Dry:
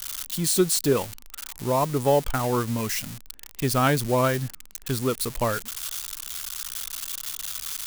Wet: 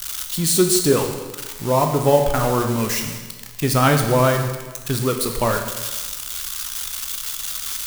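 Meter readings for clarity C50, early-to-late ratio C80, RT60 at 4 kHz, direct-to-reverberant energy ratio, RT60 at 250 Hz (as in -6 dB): 6.5 dB, 8.0 dB, 1.2 s, 3.5 dB, 1.4 s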